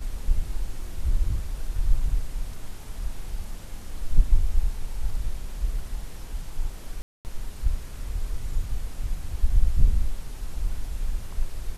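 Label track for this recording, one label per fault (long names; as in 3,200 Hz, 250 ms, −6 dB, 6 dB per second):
7.020000	7.250000	drop-out 229 ms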